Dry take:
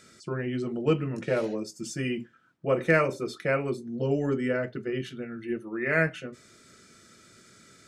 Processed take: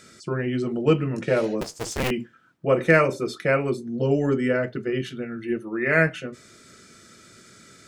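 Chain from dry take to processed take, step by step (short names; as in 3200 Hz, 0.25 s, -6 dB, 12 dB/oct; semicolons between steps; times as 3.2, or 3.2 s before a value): 1.61–2.11 cycle switcher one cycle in 2, inverted; gain +5 dB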